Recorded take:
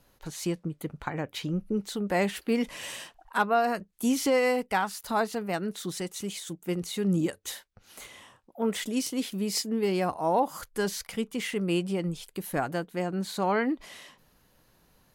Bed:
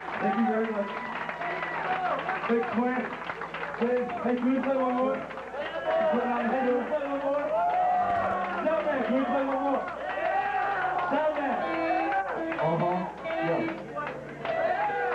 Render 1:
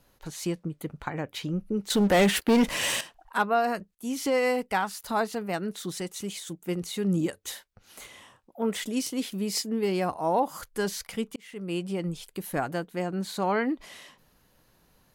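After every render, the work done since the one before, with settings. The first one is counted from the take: 1.90–3.01 s: waveshaping leveller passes 3; 3.95–4.54 s: fade in equal-power, from -15.5 dB; 11.36–12.25 s: fade in equal-power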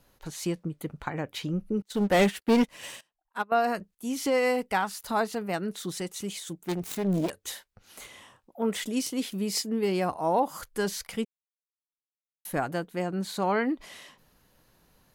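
1.82–3.52 s: upward expansion 2.5:1, over -37 dBFS; 6.64–7.30 s: self-modulated delay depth 0.58 ms; 11.25–12.45 s: mute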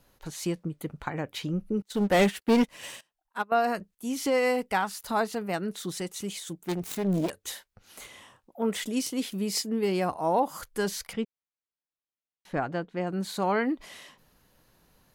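11.13–13.07 s: distance through air 150 m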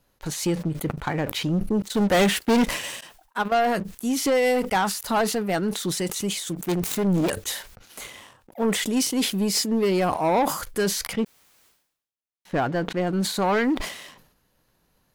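waveshaping leveller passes 2; decay stretcher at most 83 dB/s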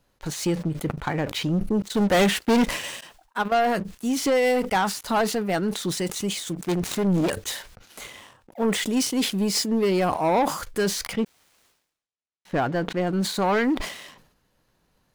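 median filter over 3 samples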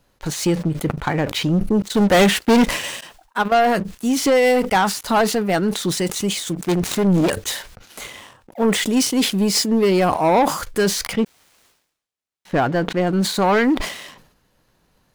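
trim +5.5 dB

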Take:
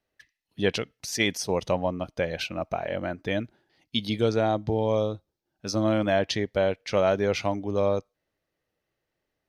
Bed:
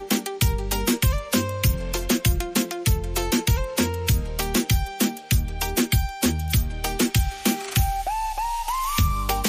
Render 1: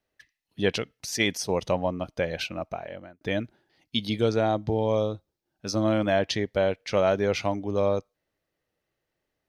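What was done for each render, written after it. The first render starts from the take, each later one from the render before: 2.44–3.21 s: fade out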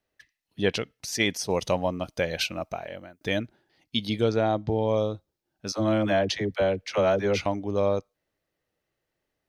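1.50–3.39 s: treble shelf 3.8 kHz +10.5 dB; 4.24–4.97 s: Bessel low-pass 6 kHz; 5.72–7.46 s: phase dispersion lows, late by 56 ms, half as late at 490 Hz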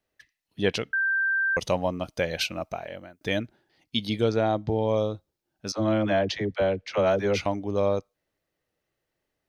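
0.93–1.57 s: bleep 1.57 kHz -21.5 dBFS; 5.72–7.06 s: distance through air 80 m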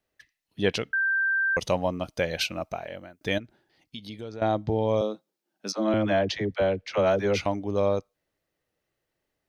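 3.38–4.42 s: compression 2.5:1, threshold -41 dBFS; 5.01–5.94 s: steep high-pass 170 Hz 48 dB/octave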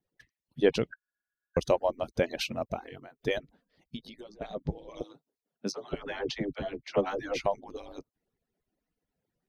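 harmonic-percussive separation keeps percussive; tilt shelf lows +6 dB, about 690 Hz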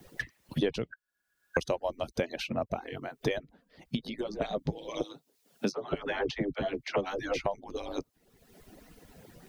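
three bands compressed up and down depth 100%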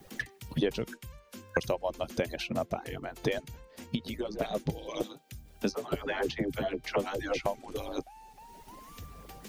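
add bed -26 dB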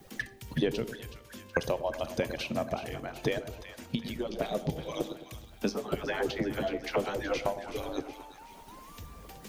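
on a send: two-band feedback delay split 870 Hz, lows 107 ms, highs 373 ms, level -11 dB; on the sum: Schroeder reverb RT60 0.4 s, combs from 27 ms, DRR 16 dB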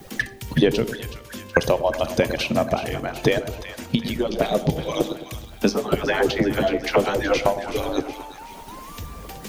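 trim +11 dB

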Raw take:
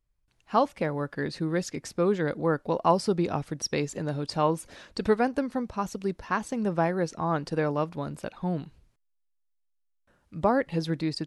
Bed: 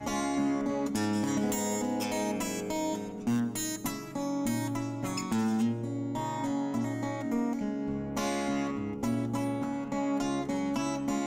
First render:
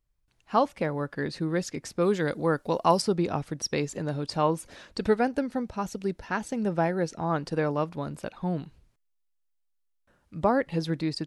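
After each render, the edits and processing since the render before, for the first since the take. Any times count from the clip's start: 2.01–3.02 s: treble shelf 4 kHz +11.5 dB; 5.08–7.30 s: band-stop 1.1 kHz, Q 5.9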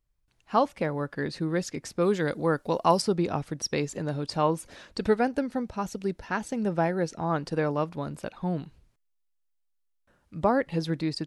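no audible change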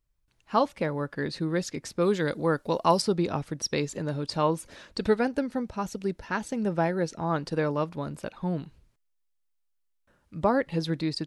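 band-stop 740 Hz, Q 14; dynamic bell 3.9 kHz, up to +4 dB, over -50 dBFS, Q 2.9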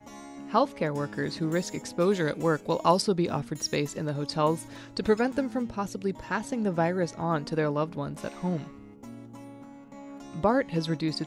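add bed -13.5 dB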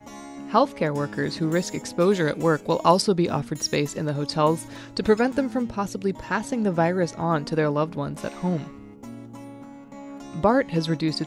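trim +4.5 dB

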